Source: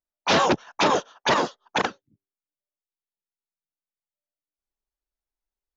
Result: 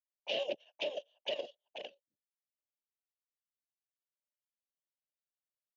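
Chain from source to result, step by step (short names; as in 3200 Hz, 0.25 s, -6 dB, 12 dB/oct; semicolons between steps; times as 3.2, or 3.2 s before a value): double band-pass 1300 Hz, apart 2.3 oct; level quantiser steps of 10 dB; dynamic EQ 930 Hz, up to -7 dB, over -52 dBFS, Q 2.4; gain -3 dB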